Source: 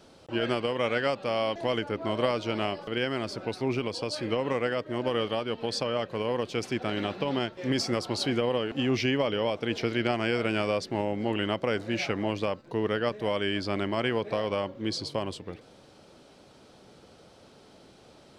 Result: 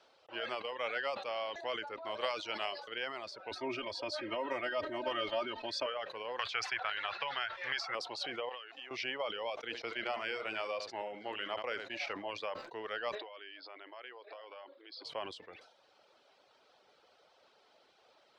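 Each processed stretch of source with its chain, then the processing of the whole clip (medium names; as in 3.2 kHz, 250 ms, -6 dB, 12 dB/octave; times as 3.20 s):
2.21–2.94 s: treble shelf 3.7 kHz +10 dB + tape noise reduction on one side only decoder only
3.51–5.86 s: bass shelf 290 Hz +12 dB + comb 3.2 ms, depth 87%
6.39–7.95 s: FFT filter 150 Hz 0 dB, 220 Hz -16 dB, 500 Hz -6 dB, 1.5 kHz +9 dB, 9.8 kHz -6 dB + three bands compressed up and down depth 100%
8.49–8.91 s: frequency weighting A + compression, threshold -35 dBFS
9.56–12.13 s: gate -33 dBFS, range -11 dB + delay 73 ms -9.5 dB
13.15–15.05 s: compression 12:1, threshold -34 dBFS + brick-wall FIR band-pass 250–5400 Hz
whole clip: reverb removal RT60 0.68 s; three-band isolator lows -23 dB, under 500 Hz, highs -18 dB, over 5.5 kHz; decay stretcher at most 76 dB/s; trim -6 dB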